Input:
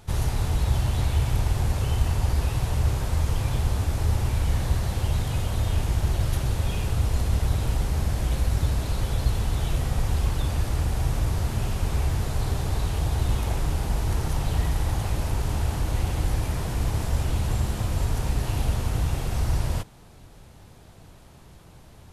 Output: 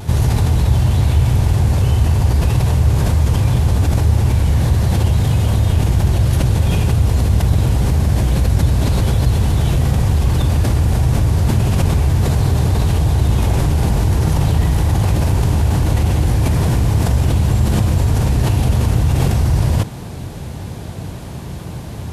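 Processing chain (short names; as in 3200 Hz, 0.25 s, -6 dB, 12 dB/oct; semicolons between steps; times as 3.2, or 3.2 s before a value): HPF 77 Hz 12 dB/oct; low shelf 340 Hz +8.5 dB; notch 1300 Hz, Q 19; in parallel at +3 dB: negative-ratio compressor -29 dBFS, ratio -1; on the sum: vibrato 0.42 Hz 12 cents; gain +3 dB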